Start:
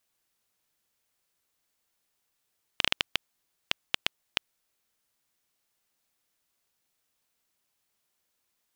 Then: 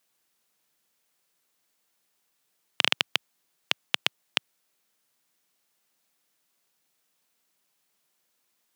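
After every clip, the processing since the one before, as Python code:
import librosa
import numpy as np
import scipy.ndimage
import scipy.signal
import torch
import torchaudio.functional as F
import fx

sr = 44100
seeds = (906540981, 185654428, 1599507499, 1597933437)

y = scipy.signal.sosfilt(scipy.signal.butter(4, 130.0, 'highpass', fs=sr, output='sos'), x)
y = y * 10.0 ** (4.0 / 20.0)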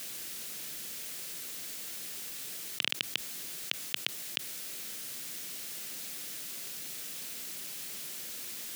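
y = fx.peak_eq(x, sr, hz=930.0, db=-10.5, octaves=1.3)
y = fx.env_flatten(y, sr, amount_pct=100)
y = y * 10.0 ** (-6.5 / 20.0)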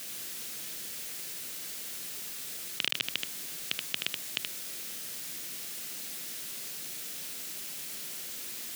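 y = x + 10.0 ** (-4.5 / 20.0) * np.pad(x, (int(77 * sr / 1000.0), 0))[:len(x)]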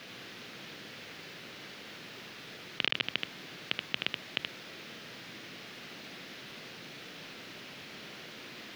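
y = fx.air_absorb(x, sr, metres=290.0)
y = y * 10.0 ** (5.5 / 20.0)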